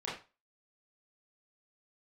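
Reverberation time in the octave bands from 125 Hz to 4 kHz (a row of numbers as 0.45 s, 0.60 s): 0.30 s, 0.25 s, 0.30 s, 0.30 s, 0.30 s, 0.25 s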